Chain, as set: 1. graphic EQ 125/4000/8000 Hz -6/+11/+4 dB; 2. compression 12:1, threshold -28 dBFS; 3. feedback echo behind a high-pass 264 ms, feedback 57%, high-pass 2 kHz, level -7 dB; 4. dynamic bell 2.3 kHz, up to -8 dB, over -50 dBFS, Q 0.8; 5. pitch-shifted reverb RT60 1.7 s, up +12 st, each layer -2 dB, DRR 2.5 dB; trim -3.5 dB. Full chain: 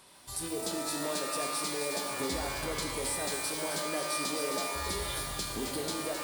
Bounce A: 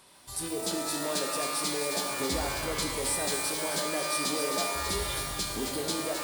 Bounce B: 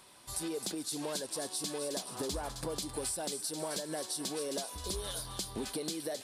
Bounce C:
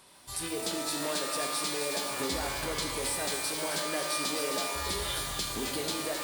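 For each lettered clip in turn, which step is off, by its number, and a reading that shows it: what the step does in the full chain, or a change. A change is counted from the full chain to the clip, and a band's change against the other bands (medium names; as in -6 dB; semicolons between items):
2, mean gain reduction 2.5 dB; 5, 2 kHz band -8.5 dB; 4, 4 kHz band +3.0 dB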